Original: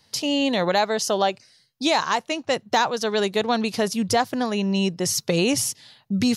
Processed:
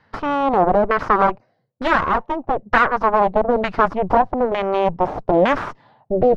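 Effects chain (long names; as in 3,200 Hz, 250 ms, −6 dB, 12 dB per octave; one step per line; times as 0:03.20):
harmonic generator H 6 −8 dB, 7 −8 dB, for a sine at −7.5 dBFS
auto-filter low-pass saw down 1.1 Hz 530–1,600 Hz
level −1 dB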